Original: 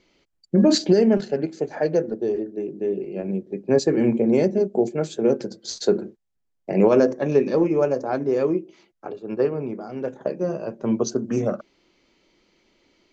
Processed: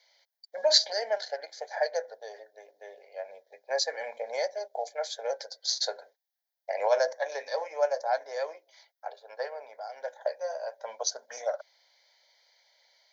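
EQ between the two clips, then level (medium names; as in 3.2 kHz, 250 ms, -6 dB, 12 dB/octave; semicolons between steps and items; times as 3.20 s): steep high-pass 550 Hz 36 dB/octave; treble shelf 4.9 kHz +10.5 dB; static phaser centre 1.8 kHz, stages 8; 0.0 dB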